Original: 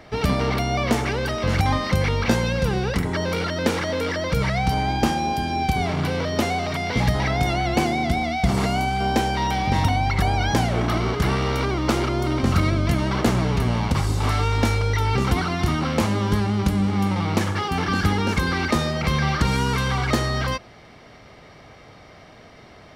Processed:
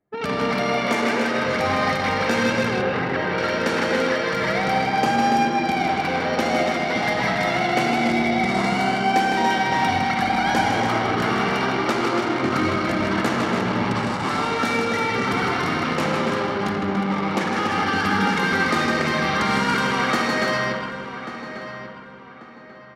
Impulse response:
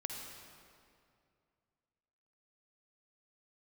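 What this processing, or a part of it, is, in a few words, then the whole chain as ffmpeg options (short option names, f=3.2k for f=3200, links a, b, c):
stadium PA: -filter_complex "[0:a]highpass=220,equalizer=f=1.6k:t=o:w=0.91:g=5,bandreject=f=60:t=h:w=6,bandreject=f=120:t=h:w=6,aecho=1:1:157.4|285.7:0.562|0.501[a];[1:a]atrim=start_sample=2205[b];[a][b]afir=irnorm=-1:irlink=0,asettb=1/sr,asplit=3[c][d][e];[c]atrim=end=2.824[f];[d]atrim=start=2.82:end=3.38,asetpts=PTS-STARTPTS,afade=t=in:d=0.004:c=qsin,afade=t=out:st=0.556:d=0.004:c=qsin,acrossover=split=4100[g][h];[h]acompressor=threshold=-52dB:ratio=4:attack=1:release=60[i];[g][i]amix=inputs=2:normalize=0[j];[e]atrim=start=3.376[k];[f][j]acrossfade=d=0.004:c1=hsin:c2=qsin[l];[l][k]acrossfade=d=0.004:c1=qsin:c2=hsin,anlmdn=158,asplit=2[m][n];[n]adelay=1139,lowpass=f=2.8k:p=1,volume=-11dB,asplit=2[o][p];[p]adelay=1139,lowpass=f=2.8k:p=1,volume=0.35,asplit=2[q][r];[r]adelay=1139,lowpass=f=2.8k:p=1,volume=0.35,asplit=2[s][t];[t]adelay=1139,lowpass=f=2.8k:p=1,volume=0.35[u];[m][o][q][s][u]amix=inputs=5:normalize=0"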